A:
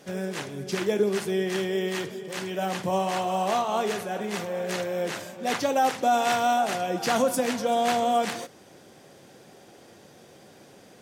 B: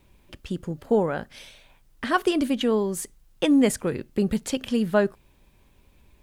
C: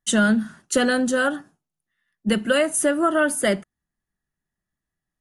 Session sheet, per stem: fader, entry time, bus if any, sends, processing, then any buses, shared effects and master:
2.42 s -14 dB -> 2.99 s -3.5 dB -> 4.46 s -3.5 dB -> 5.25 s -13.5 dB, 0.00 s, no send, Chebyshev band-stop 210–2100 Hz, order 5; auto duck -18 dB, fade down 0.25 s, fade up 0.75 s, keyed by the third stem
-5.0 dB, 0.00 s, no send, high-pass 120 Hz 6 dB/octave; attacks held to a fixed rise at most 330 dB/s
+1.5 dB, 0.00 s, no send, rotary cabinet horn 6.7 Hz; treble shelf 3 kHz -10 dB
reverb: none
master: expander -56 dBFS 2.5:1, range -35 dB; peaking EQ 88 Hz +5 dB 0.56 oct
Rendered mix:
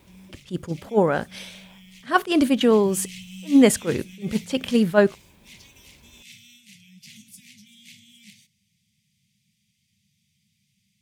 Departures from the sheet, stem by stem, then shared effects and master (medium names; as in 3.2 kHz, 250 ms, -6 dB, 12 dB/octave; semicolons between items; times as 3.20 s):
stem B -5.0 dB -> +6.0 dB; stem C: muted; master: missing expander -56 dBFS 2.5:1, range -35 dB